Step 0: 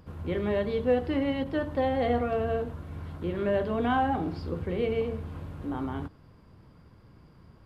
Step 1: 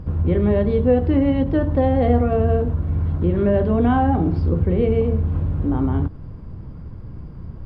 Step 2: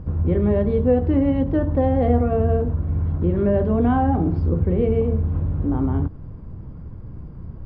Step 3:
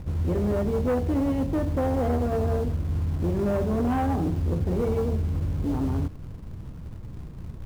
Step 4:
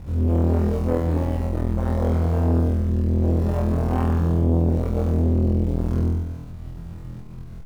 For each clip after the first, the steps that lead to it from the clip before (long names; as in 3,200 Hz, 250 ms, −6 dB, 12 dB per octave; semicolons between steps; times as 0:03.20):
spectral tilt −3.5 dB per octave; in parallel at +2.5 dB: downward compressor, threshold −28 dBFS, peak gain reduction 12.5 dB; on the sum: level +1 dB
high-shelf EQ 2,700 Hz −10.5 dB; level −1 dB
in parallel at −6.5 dB: log-companded quantiser 4 bits; on the sum: soft clipping −13.5 dBFS, distortion −13 dB; level −6 dB
on a send: flutter between parallel walls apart 4.1 metres, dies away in 1.1 s; on the sum: saturating transformer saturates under 280 Hz; level −1.5 dB